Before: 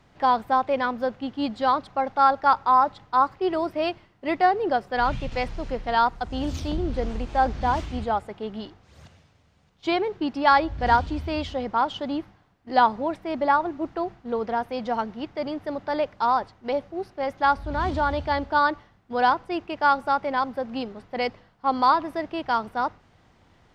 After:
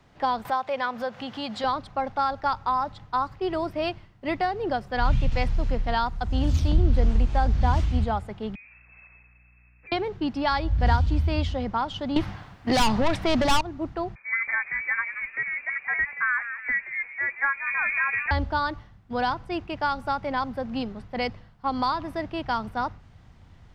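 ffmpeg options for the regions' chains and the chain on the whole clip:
-filter_complex "[0:a]asettb=1/sr,asplit=3[a][b][c];[a]atrim=end=0.454[d];[b]atrim=start=0.45:end=1.64,asetpts=PTS-STARTPTS,afade=t=in:d=0.004:c=qsin,afade=t=out:st=1.186:d=0.004:c=qsin,highpass=190,equalizer=f=320:t=o:w=0.98:g=-11.5,acompressor=mode=upward:threshold=-25dB:ratio=2.5:attack=3.2:release=140:knee=2.83:detection=peak[e];[c]atrim=start=1.636[f];[d][e]acrossfade=d=0.004:c1=hsin:c2=qsin[g];[g][f]acrossfade=d=0.004:c1=qsin:c2=hsin,asettb=1/sr,asplit=3[h][i][j];[h]atrim=end=8.554[k];[i]atrim=start=8.55:end=9.92,asetpts=PTS-STARTPTS,afade=t=in:d=0.004:c=qsin,afade=t=out:st=1.366:d=0.004:c=qsin,lowpass=f=2.3k:t=q:w=0.5098,lowpass=f=2.3k:t=q:w=0.6013,lowpass=f=2.3k:t=q:w=0.9,lowpass=f=2.3k:t=q:w=2.563,afreqshift=-2700,aeval=exprs='val(0)+0.000447*(sin(2*PI*60*n/s)+sin(2*PI*2*60*n/s)/2+sin(2*PI*3*60*n/s)/3+sin(2*PI*4*60*n/s)/4+sin(2*PI*5*60*n/s)/5)':c=same,acompressor=threshold=-47dB:ratio=5:attack=3.2:release=140:knee=1:detection=peak[l];[j]atrim=start=9.916[m];[k][l]acrossfade=d=0.004:c1=hsin:c2=qsin[n];[n][m]acrossfade=d=0.004:c1=qsin:c2=hsin,asettb=1/sr,asplit=3[o][p][q];[o]atrim=end=12.164[r];[p]atrim=start=12.16:end=13.61,asetpts=PTS-STARTPTS,afade=t=in:d=0.004:c=qsin,afade=t=out:st=1.446:d=0.004:c=qsin,lowshelf=f=130:g=11,asplit=2[s][t];[t]highpass=f=720:p=1,volume=26dB,asoftclip=type=tanh:threshold=-5.5dB[u];[s][u]amix=inputs=2:normalize=0,lowpass=f=4.7k:p=1,volume=-6dB[v];[q]atrim=start=13.606[w];[r][v]acrossfade=d=0.004:c1=hsin:c2=qsin[x];[x][w]acrossfade=d=0.004:c1=qsin:c2=hsin,asettb=1/sr,asplit=3[y][z][aa];[y]atrim=end=14.154[ab];[z]atrim=start=14.15:end=18.31,asetpts=PTS-STARTPTS,afade=t=in:d=0.004:c=qsin,afade=t=out:st=4.156:d=0.004:c=qsin,lowpass=f=2.1k:t=q:w=0.5098,lowpass=f=2.1k:t=q:w=0.6013,lowpass=f=2.1k:t=q:w=0.9,lowpass=f=2.1k:t=q:w=2.563,afreqshift=-2500,asplit=6[ac][ad][ae][af][ag][ah];[ad]adelay=177,afreqshift=110,volume=-13dB[ai];[ae]adelay=354,afreqshift=220,volume=-19.7dB[aj];[af]adelay=531,afreqshift=330,volume=-26.5dB[ak];[ag]adelay=708,afreqshift=440,volume=-33.2dB[al];[ah]adelay=885,afreqshift=550,volume=-40dB[am];[ac][ai][aj][ak][al][am]amix=inputs=6:normalize=0,atrim=end_sample=183456[an];[aa]atrim=start=18.306[ao];[ab][an]acrossfade=d=0.004:c1=hsin:c2=qsin[ap];[ap][ao]acrossfade=d=0.004:c1=qsin:c2=hsin,acrossover=split=180|3000[aq][ar][as];[ar]acompressor=threshold=-21dB:ratio=6[at];[aq][at][as]amix=inputs=3:normalize=0,asubboost=boost=3.5:cutoff=180"

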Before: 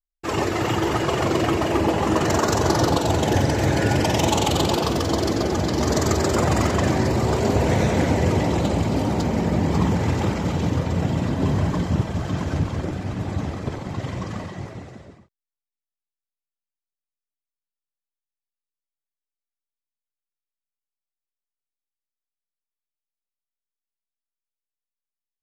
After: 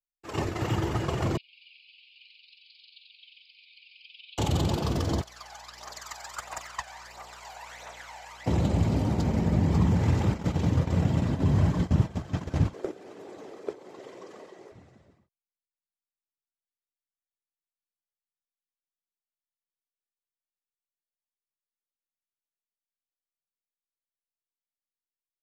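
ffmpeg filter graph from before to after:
-filter_complex "[0:a]asettb=1/sr,asplit=3[a][b][c];[a]atrim=end=1.374[d];[b]atrim=start=1.37:end=4.38,asetpts=PTS-STARTPTS,afade=t=in:d=0.004:c=qsin,afade=t=out:st=3.006:d=0.004:c=qsin,acrossover=split=3800[e][f];[f]acompressor=threshold=-43dB:ratio=4:attack=1:release=60[g];[e][g]amix=inputs=2:normalize=0,asuperpass=centerf=3400:order=20:qfactor=1.3[h];[c]atrim=start=4.376[i];[d][h]acrossfade=d=0.004:c1=hsin:c2=qsin[j];[j][i]acrossfade=d=0.004:c1=qsin:c2=hsin,asettb=1/sr,asplit=3[k][l][m];[k]atrim=end=5.214[n];[l]atrim=start=5.21:end=8.46,asetpts=PTS-STARTPTS,afade=t=in:d=0.004:c=qsin,afade=t=out:st=3.246:d=0.004:c=qsin,highpass=f=810:w=0.5412,highpass=f=810:w=1.3066,aeval=exprs='val(0)+0.00447*(sin(2*PI*60*n/s)+sin(2*PI*2*60*n/s)/2+sin(2*PI*3*60*n/s)/3+sin(2*PI*4*60*n/s)/4+sin(2*PI*5*60*n/s)/5)':c=same,aphaser=in_gain=1:out_gain=1:delay=1.4:decay=0.55:speed=1.5:type=triangular[o];[m]atrim=start=8.456[p];[n][o]acrossfade=d=0.004:c1=hsin:c2=qsin[q];[q][p]acrossfade=d=0.004:c1=qsin:c2=hsin,asettb=1/sr,asplit=3[r][s][t];[r]atrim=end=12.734[u];[s]atrim=start=12.73:end=14.72,asetpts=PTS-STARTPTS,afade=t=in:d=0.004:c=qsin,afade=t=out:st=1.986:d=0.004:c=qsin,highpass=f=410:t=q:w=3.9,highshelf=f=5.2k:g=4.5[v];[t]atrim=start=14.716[w];[u][v]acrossfade=d=0.004:c1=hsin:c2=qsin[x];[x][w]acrossfade=d=0.004:c1=qsin:c2=hsin,agate=range=-16dB:threshold=-22dB:ratio=16:detection=peak,acrossover=split=190[y][z];[z]acompressor=threshold=-30dB:ratio=6[aa];[y][aa]amix=inputs=2:normalize=0"

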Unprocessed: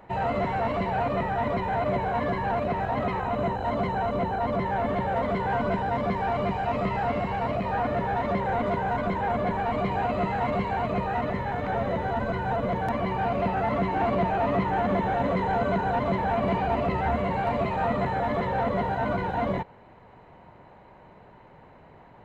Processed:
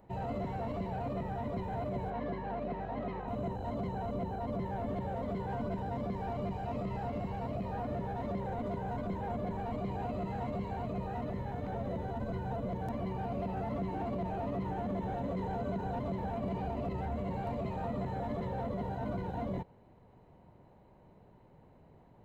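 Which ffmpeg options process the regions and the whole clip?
-filter_complex "[0:a]asettb=1/sr,asplit=3[a][b][c];[a]atrim=end=2.104[d];[b]atrim=start=2.1:end=3.28,asetpts=PTS-STARTPTS,afade=t=in:d=0.004:c=qsin,afade=t=out:st=1.176:d=0.004:c=qsin,highpass=190,lowpass=4.2k,equalizer=f=1.9k:t=o:w=0.3:g=3,aeval=exprs='val(0)+0.00891*(sin(2*PI*50*n/s)+sin(2*PI*2*50*n/s)/2+sin(2*PI*3*50*n/s)/3+sin(2*PI*4*50*n/s)/4+sin(2*PI*5*50*n/s)/5)':c=same[e];[c]atrim=start=3.276[f];[d][e]acrossfade=d=0.004:c1=hsin:c2=qsin[g];[g][f]acrossfade=d=0.004:c1=qsin:c2=hsin,equalizer=f=1.7k:w=0.45:g=-13,alimiter=limit=-23.5dB:level=0:latency=1:release=33,volume=-4.5dB"

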